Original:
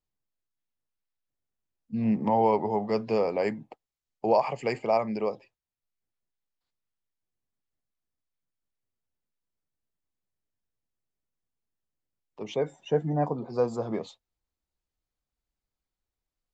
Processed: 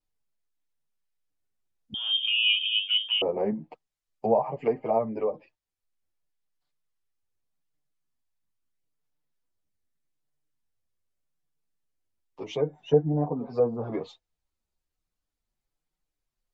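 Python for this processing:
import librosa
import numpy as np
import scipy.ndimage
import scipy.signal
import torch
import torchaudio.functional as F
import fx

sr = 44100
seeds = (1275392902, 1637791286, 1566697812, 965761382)

y = fx.chorus_voices(x, sr, voices=4, hz=0.4, base_ms=10, depth_ms=3.5, mix_pct=55)
y = fx.env_lowpass_down(y, sr, base_hz=790.0, full_db=-27.0)
y = fx.freq_invert(y, sr, carrier_hz=3400, at=(1.94, 3.22))
y = y * 10.0 ** (4.0 / 20.0)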